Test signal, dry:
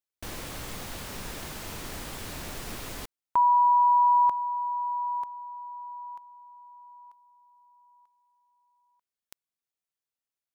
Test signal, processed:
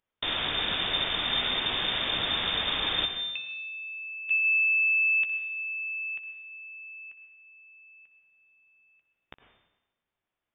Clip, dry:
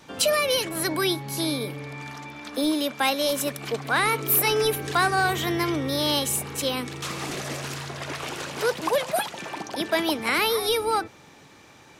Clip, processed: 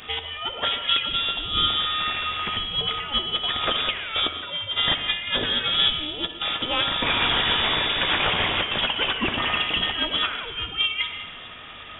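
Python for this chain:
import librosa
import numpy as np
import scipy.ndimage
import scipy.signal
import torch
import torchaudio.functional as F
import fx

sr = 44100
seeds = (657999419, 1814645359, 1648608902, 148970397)

y = fx.high_shelf(x, sr, hz=2800.0, db=9.0)
y = fx.over_compress(y, sr, threshold_db=-27.0, ratio=-0.5)
y = fx.room_early_taps(y, sr, ms=(14, 60), db=(-11.5, -15.0))
y = fx.rev_freeverb(y, sr, rt60_s=1.0, hf_ratio=0.95, predelay_ms=60, drr_db=7.5)
y = fx.freq_invert(y, sr, carrier_hz=3600)
y = y * 10.0 ** (3.0 / 20.0)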